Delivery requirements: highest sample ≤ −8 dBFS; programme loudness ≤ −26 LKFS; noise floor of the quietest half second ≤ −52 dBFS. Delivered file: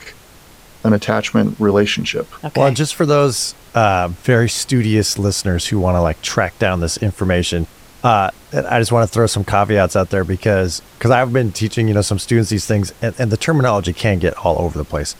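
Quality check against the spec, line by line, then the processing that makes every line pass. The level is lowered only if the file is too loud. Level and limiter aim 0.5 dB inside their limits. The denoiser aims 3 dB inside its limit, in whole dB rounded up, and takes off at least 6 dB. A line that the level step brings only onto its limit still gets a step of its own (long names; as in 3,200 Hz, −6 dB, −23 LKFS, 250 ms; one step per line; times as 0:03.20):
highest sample −1.5 dBFS: out of spec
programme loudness −16.5 LKFS: out of spec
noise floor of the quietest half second −43 dBFS: out of spec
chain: level −10 dB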